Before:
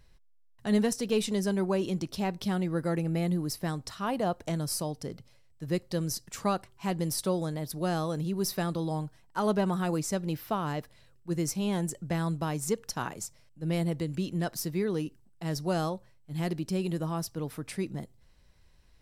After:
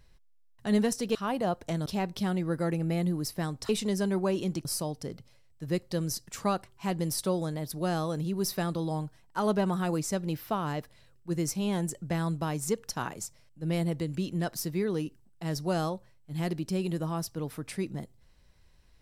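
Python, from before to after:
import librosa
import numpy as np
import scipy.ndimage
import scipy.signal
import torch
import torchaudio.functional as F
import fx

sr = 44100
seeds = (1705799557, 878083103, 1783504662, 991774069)

y = fx.edit(x, sr, fx.swap(start_s=1.15, length_s=0.96, other_s=3.94, other_length_s=0.71), tone=tone)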